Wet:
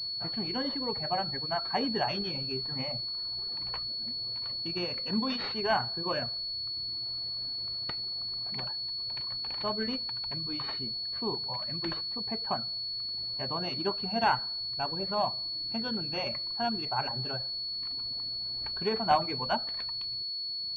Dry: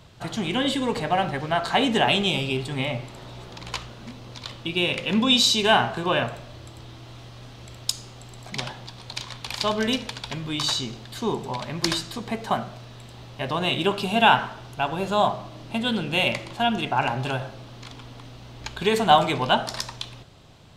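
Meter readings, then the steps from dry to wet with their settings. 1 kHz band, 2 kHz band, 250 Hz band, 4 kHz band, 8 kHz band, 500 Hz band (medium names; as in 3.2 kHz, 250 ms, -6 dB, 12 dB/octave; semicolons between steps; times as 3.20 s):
-9.0 dB, -12.5 dB, -10.0 dB, -3.0 dB, under -30 dB, -9.5 dB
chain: reverb removal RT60 1.4 s; class-D stage that switches slowly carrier 4.4 kHz; trim -8 dB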